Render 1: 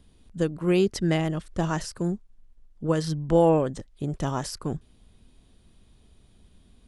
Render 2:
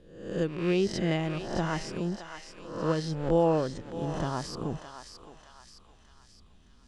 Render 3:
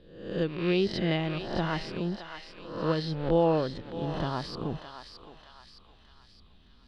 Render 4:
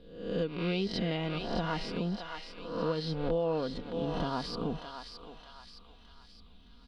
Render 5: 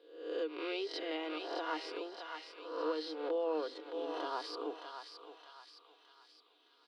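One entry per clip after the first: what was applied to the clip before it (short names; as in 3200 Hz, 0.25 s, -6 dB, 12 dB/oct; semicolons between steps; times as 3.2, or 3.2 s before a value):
spectral swells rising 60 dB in 0.71 s; LPF 5700 Hz 12 dB/oct; thinning echo 0.616 s, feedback 55%, high-pass 1100 Hz, level -7 dB; gain -5 dB
resonant high shelf 5300 Hz -9 dB, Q 3
notch 1800 Hz, Q 7; comb 4.2 ms, depth 50%; compressor 4:1, threshold -28 dBFS, peak gain reduction 9.5 dB
rippled Chebyshev high-pass 300 Hz, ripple 3 dB; gain -2 dB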